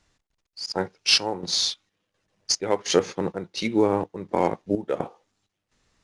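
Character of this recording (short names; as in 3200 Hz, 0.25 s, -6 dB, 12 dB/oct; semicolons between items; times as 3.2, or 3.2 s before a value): chopped level 1.4 Hz, depth 65%, duty 65%; IMA ADPCM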